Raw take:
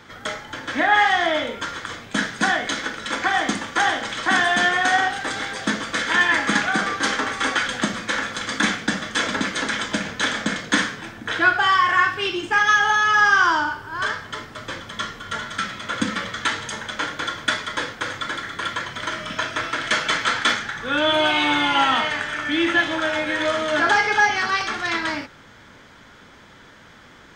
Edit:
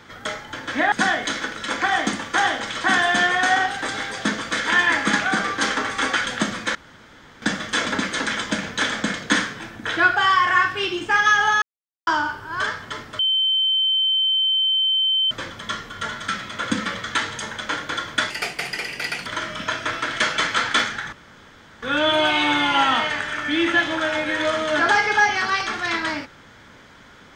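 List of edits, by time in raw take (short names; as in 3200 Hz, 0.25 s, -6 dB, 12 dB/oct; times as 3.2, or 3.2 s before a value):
0.92–2.34 cut
8.17–8.84 room tone
13.04–13.49 mute
14.61 add tone 3090 Hz -16.5 dBFS 2.12 s
17.6–18.97 speed 142%
20.83 insert room tone 0.70 s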